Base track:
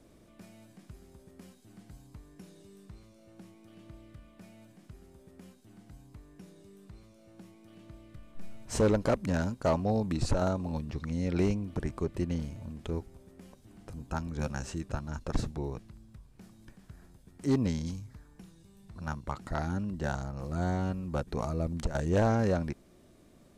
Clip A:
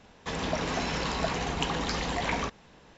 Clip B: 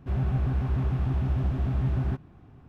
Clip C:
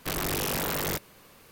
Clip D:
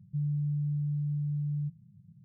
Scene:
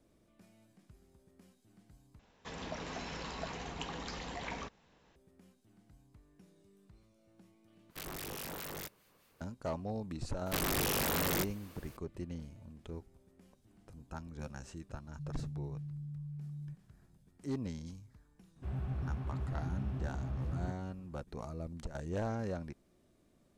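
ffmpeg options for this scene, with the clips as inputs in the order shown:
-filter_complex "[3:a]asplit=2[s0][s1];[0:a]volume=0.299[s2];[s0]acrossover=split=1500[s3][s4];[s3]aeval=exprs='val(0)*(1-0.5/2+0.5/2*cos(2*PI*4.8*n/s))':c=same[s5];[s4]aeval=exprs='val(0)*(1-0.5/2-0.5/2*cos(2*PI*4.8*n/s))':c=same[s6];[s5][s6]amix=inputs=2:normalize=0[s7];[s2]asplit=3[s8][s9][s10];[s8]atrim=end=2.194[s11];[1:a]atrim=end=2.97,asetpts=PTS-STARTPTS,volume=0.251[s12];[s9]atrim=start=5.156:end=7.904[s13];[s7]atrim=end=1.51,asetpts=PTS-STARTPTS,volume=0.266[s14];[s10]atrim=start=9.406[s15];[s1]atrim=end=1.51,asetpts=PTS-STARTPTS,volume=0.668,afade=t=in:d=0.004:c=hsin,afade=t=out:st=1.506:d=0.004:c=hsin,adelay=10460[s16];[4:a]atrim=end=2.24,asetpts=PTS-STARTPTS,volume=0.251,afade=t=in:d=0.004:c=hsin,afade=t=out:st=2.236:d=0.004:c=hsin,adelay=15050[s17];[2:a]atrim=end=2.68,asetpts=PTS-STARTPTS,volume=0.266,afade=t=in:d=0.004:c=hsin,afade=t=out:st=2.676:d=0.004:c=hsin,adelay=18560[s18];[s11][s12]acrossfade=d=0.004:c1=hsin:c2=hsin[s19];[s19][s13]acrossfade=d=0.004:c1=hsin:c2=hsin[s20];[s20][s14]acrossfade=d=0.004:c1=hsin:c2=hsin[s21];[s21][s15]acrossfade=d=0.004:c1=hsin:c2=hsin[s22];[s22][s16][s17][s18]amix=inputs=4:normalize=0"

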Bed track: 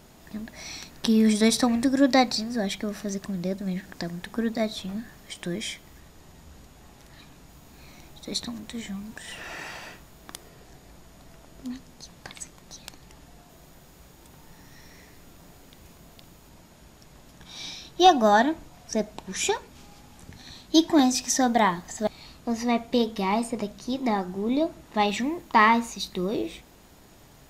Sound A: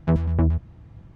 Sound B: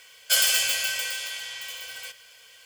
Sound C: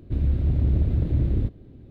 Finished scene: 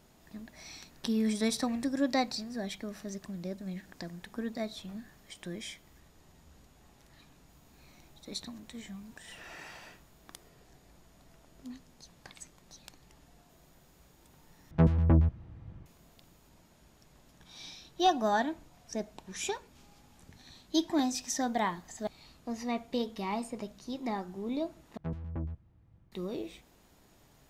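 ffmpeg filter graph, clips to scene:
-filter_complex "[1:a]asplit=2[s0][s1];[0:a]volume=0.335,asplit=3[s2][s3][s4];[s2]atrim=end=14.714[s5];[s0]atrim=end=1.15,asetpts=PTS-STARTPTS,volume=0.708[s6];[s3]atrim=start=15.856:end=24.974[s7];[s1]atrim=end=1.15,asetpts=PTS-STARTPTS,volume=0.141[s8];[s4]atrim=start=26.116[s9];[s5][s6]acrossfade=d=0.004:c1=hsin:c2=hsin[s10];[s10][s7]acrossfade=d=0.004:c1=hsin:c2=hsin[s11];[s11][s8]acrossfade=d=0.004:c1=hsin:c2=hsin[s12];[s12][s9]acrossfade=d=0.004:c1=hsin:c2=hsin"

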